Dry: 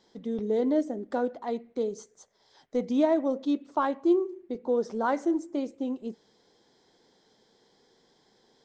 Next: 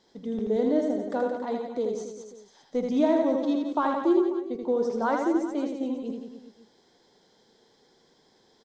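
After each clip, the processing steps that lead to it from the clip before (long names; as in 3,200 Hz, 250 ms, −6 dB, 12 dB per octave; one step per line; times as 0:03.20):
reverse bouncing-ball delay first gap 80 ms, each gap 1.15×, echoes 5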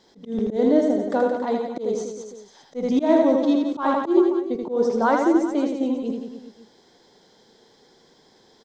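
volume swells 124 ms
level +6.5 dB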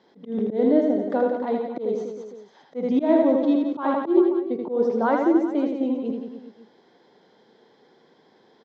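high-pass filter 150 Hz 12 dB per octave
dynamic equaliser 1,200 Hz, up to −4 dB, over −35 dBFS, Q 1
low-pass filter 2,700 Hz 12 dB per octave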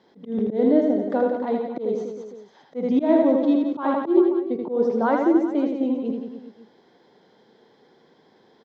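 low-shelf EQ 120 Hz +6.5 dB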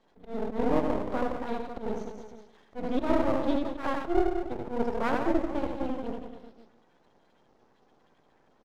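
spectral magnitudes quantised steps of 30 dB
repeating echo 149 ms, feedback 52%, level −17.5 dB
half-wave rectification
level −3.5 dB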